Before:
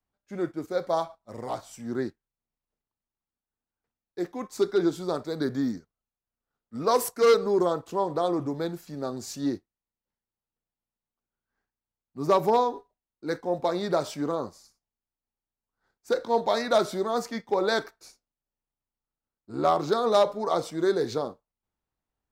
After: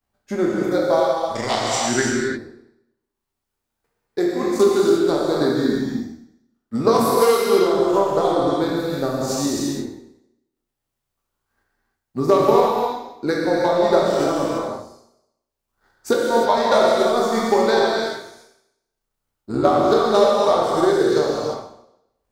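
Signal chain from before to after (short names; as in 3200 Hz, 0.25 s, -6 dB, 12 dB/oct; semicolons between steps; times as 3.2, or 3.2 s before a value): spectral trails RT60 0.89 s; 1.35–2.02 band shelf 3400 Hz +14.5 dB 2.6 oct; transient shaper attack +9 dB, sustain -12 dB; compressor 2:1, threshold -26 dBFS, peak gain reduction 10 dB; non-linear reverb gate 0.37 s flat, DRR -3 dB; gain +5 dB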